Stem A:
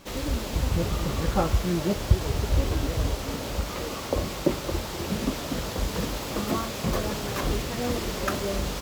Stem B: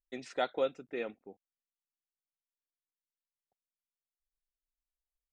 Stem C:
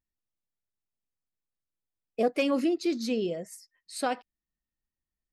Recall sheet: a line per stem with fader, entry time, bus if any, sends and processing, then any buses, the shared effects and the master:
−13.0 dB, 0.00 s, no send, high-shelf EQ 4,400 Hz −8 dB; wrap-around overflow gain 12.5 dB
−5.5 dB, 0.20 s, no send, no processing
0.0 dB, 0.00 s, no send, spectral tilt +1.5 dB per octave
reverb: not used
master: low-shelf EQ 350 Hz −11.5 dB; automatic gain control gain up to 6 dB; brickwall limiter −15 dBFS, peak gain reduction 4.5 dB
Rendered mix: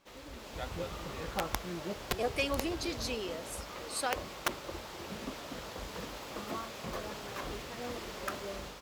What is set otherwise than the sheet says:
stem B −5.5 dB → −14.0 dB
stem C 0.0 dB → −8.5 dB

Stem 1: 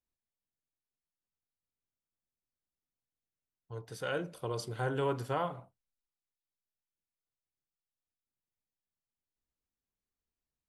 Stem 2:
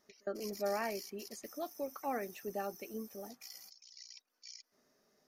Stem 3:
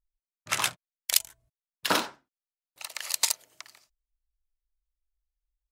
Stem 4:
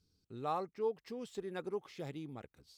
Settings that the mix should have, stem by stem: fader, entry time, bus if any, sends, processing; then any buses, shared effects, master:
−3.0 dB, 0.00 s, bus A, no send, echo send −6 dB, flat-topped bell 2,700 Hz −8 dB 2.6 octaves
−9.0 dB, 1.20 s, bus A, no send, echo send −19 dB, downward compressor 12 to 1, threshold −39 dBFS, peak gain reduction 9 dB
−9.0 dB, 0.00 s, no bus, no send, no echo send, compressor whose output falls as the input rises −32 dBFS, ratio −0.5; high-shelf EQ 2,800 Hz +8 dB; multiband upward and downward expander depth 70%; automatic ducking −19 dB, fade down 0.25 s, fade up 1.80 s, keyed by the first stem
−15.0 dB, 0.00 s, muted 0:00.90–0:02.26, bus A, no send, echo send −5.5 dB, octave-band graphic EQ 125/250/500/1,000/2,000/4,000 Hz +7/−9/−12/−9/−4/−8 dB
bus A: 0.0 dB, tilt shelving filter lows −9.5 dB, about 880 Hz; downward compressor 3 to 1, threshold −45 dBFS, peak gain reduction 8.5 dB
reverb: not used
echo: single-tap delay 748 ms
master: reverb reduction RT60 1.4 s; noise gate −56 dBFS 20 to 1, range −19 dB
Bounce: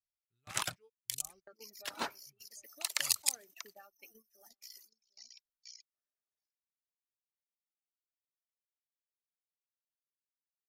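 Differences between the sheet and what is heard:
stem 1: muted
stem 4 −15.0 dB → −8.0 dB

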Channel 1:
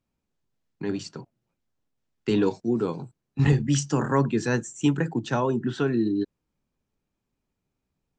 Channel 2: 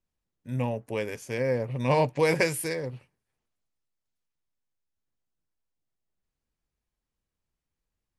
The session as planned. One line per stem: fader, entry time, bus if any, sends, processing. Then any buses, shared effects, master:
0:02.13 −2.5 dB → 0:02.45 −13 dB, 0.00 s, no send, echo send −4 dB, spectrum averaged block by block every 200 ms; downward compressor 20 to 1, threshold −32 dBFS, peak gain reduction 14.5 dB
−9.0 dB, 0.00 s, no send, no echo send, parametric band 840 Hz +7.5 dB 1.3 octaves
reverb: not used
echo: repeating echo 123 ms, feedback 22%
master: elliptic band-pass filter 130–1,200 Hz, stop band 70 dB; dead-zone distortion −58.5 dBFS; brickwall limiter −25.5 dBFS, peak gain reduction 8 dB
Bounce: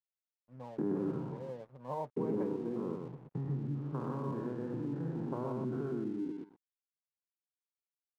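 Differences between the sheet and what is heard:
stem 1 −2.5 dB → +9.0 dB
stem 2 −9.0 dB → −19.0 dB

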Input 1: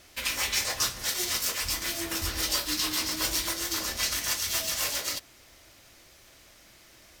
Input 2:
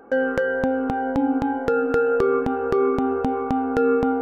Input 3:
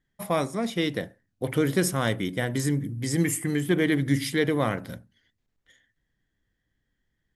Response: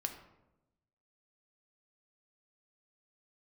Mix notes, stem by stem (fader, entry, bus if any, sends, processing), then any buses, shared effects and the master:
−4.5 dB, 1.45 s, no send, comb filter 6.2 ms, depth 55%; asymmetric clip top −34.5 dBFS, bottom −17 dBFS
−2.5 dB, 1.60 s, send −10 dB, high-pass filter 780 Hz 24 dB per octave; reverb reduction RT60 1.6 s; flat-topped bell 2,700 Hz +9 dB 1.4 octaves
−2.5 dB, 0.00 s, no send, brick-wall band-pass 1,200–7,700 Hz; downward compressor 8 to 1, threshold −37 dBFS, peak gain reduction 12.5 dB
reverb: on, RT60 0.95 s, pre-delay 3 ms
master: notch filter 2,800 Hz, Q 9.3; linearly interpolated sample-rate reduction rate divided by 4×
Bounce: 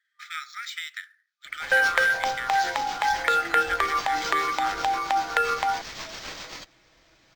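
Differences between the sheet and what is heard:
stem 2 −2.5 dB → +5.5 dB
stem 3 −2.5 dB → +8.0 dB

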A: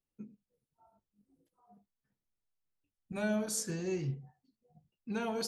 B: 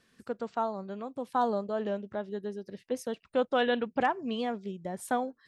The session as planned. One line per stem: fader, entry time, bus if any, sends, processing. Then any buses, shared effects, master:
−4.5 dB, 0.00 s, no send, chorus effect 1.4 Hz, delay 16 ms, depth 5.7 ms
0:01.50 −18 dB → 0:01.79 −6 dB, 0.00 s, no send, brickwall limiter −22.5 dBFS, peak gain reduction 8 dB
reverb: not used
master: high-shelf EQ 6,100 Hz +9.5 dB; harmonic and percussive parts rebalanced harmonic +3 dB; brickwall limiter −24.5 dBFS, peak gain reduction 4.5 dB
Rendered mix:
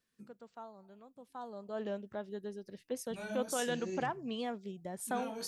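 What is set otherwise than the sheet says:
stem B: missing brickwall limiter −22.5 dBFS, peak gain reduction 8 dB
master: missing harmonic and percussive parts rebalanced harmonic +3 dB

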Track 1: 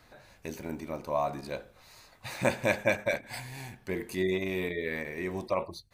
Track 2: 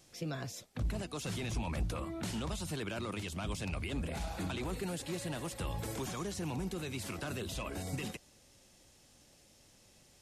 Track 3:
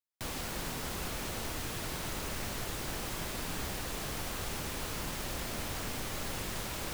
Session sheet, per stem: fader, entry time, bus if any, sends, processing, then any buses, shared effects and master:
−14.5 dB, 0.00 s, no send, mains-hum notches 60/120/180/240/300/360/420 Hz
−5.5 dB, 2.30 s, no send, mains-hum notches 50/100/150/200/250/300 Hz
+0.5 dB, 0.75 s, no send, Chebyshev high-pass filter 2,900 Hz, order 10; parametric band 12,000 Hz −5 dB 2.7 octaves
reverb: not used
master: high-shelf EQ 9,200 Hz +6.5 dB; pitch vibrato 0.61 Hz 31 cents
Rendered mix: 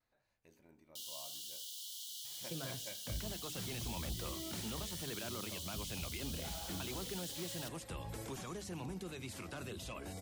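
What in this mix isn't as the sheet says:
stem 1 −14.5 dB → −26.0 dB
master: missing high-shelf EQ 9,200 Hz +6.5 dB

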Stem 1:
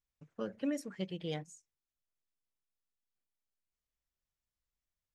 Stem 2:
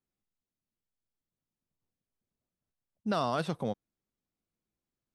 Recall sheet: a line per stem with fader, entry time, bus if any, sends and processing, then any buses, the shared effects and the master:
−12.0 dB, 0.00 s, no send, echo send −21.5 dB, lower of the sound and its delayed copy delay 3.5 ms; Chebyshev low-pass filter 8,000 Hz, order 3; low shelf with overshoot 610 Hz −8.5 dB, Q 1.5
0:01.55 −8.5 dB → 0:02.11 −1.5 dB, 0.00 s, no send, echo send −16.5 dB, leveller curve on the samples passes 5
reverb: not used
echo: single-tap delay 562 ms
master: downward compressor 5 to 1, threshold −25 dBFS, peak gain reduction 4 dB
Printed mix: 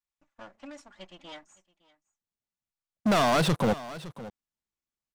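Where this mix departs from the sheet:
stem 1 −12.0 dB → −1.5 dB
master: missing downward compressor 5 to 1, threshold −25 dBFS, peak gain reduction 4 dB

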